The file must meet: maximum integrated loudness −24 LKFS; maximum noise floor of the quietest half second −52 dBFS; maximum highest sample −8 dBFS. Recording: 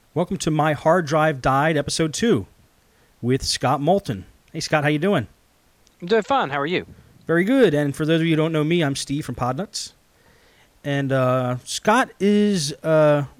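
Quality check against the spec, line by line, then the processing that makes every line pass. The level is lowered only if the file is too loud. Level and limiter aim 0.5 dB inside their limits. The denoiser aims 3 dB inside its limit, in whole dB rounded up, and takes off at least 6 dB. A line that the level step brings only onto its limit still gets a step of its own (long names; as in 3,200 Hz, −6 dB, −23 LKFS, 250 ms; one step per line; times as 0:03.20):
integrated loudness −20.5 LKFS: out of spec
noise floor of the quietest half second −58 dBFS: in spec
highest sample −3.5 dBFS: out of spec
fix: level −4 dB
brickwall limiter −8.5 dBFS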